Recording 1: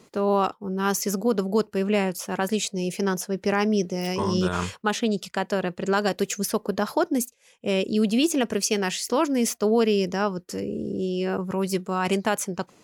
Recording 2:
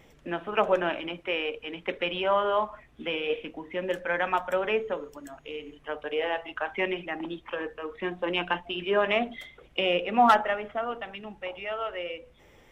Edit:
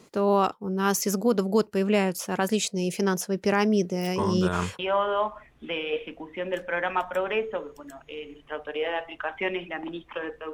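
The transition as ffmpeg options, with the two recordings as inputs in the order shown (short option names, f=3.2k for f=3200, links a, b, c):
-filter_complex "[0:a]asettb=1/sr,asplit=3[a][b][c];[a]atrim=end=3.694[d];[b]atrim=start=3.69:end=4.79,asetpts=PTS-STARTPTS,afade=t=in:d=0.004:c=qsin,afade=t=out:st=1.096:d=0.004:c=qsin,equalizer=f=4.8k:t=o:w=1.4:g=-4[e];[c]atrim=start=4.786[f];[d][e]acrossfade=d=0.004:c1=hsin:c2=qsin[g];[g][f]acrossfade=d=0.004:c1=qsin:c2=hsin,apad=whole_dur=10.53,atrim=end=10.53,atrim=end=4.792[h];[1:a]atrim=start=2.158:end=7.9[i];[h][i]acrossfade=d=0.004:c1=hsin:c2=hsin"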